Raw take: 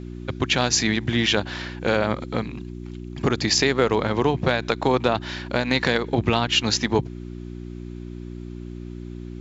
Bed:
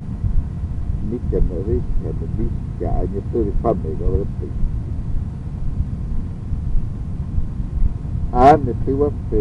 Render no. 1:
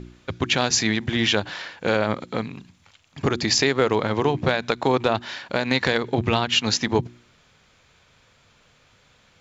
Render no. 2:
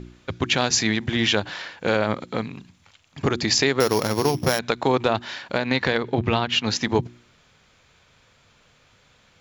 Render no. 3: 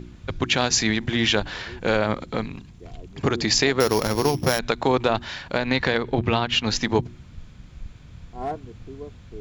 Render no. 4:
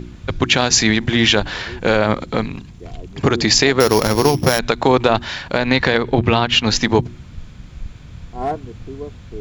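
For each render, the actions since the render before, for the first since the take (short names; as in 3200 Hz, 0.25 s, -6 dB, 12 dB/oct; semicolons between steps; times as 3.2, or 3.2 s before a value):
de-hum 60 Hz, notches 6
3.8–4.59 sample sorter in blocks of 8 samples; 5.58–6.76 air absorption 91 m
add bed -20 dB
gain +7 dB; limiter -1 dBFS, peak gain reduction 3 dB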